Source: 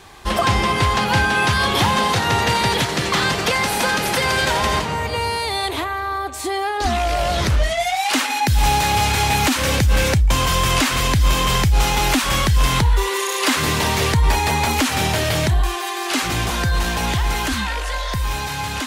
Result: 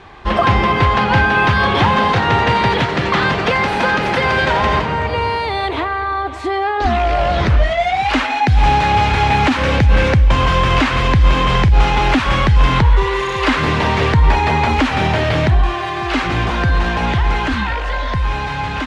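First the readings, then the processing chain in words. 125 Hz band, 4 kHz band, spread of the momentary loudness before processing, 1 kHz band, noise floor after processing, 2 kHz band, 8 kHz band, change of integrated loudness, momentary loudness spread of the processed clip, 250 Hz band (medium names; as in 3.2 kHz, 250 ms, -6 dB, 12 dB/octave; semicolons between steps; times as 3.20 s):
+4.5 dB, -2.0 dB, 6 LU, +4.5 dB, -21 dBFS, +3.5 dB, -13.5 dB, +3.5 dB, 6 LU, +4.5 dB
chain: low-pass 2.6 kHz 12 dB/octave; on a send: delay 544 ms -16 dB; on the sum: trim +4.5 dB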